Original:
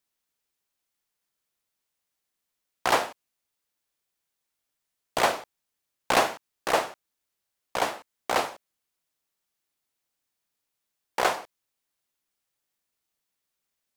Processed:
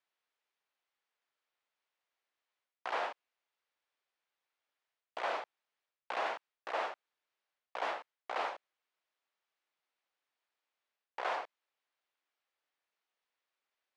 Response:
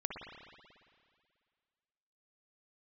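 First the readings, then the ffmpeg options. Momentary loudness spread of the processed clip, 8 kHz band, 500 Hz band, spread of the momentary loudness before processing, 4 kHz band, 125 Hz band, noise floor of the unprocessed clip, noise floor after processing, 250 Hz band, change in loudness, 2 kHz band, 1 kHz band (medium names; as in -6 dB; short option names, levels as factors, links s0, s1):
14 LU, -25.5 dB, -12.0 dB, 13 LU, -14.5 dB, under -30 dB, -83 dBFS, under -85 dBFS, -19.0 dB, -11.5 dB, -11.0 dB, -10.5 dB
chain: -af "areverse,acompressor=threshold=0.0224:ratio=8,areverse,highpass=500,lowpass=3000,volume=1.12"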